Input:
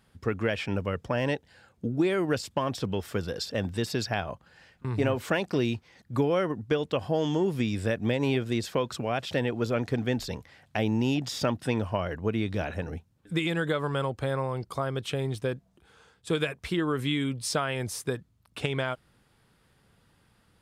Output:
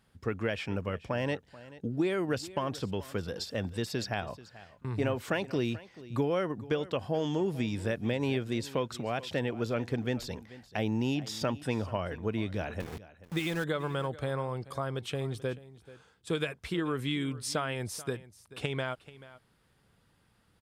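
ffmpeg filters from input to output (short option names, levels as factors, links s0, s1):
-filter_complex "[0:a]asettb=1/sr,asplit=3[s0][s1][s2];[s0]atrim=end=12.804[s3];[s1]atrim=start=12.8:end=13.64,asetpts=PTS-STARTPTS,afade=t=in:d=0.004:c=qsin,afade=t=out:st=0.836:d=0.004:c=qsin,aeval=exprs='val(0)*gte(abs(val(0)),0.0188)':c=same[s4];[s2]atrim=start=13.636[s5];[s3][s4]acrossfade=d=0.004:c1=hsin:c2=qsin[s6];[s6][s5]acrossfade=d=0.004:c1=qsin:c2=hsin,asplit=2[s7][s8];[s8]aecho=0:1:435:0.126[s9];[s7][s9]amix=inputs=2:normalize=0,volume=0.631"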